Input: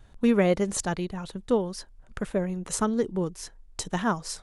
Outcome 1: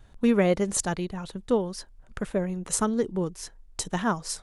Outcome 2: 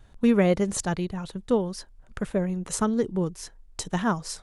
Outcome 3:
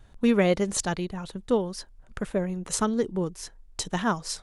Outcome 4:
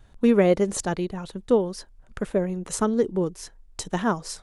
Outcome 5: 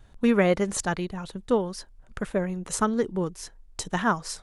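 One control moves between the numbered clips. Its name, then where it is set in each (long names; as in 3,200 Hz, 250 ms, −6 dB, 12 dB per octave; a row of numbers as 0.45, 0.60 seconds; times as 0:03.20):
dynamic equaliser, frequency: 9,900, 110, 3,900, 400, 1,500 Hertz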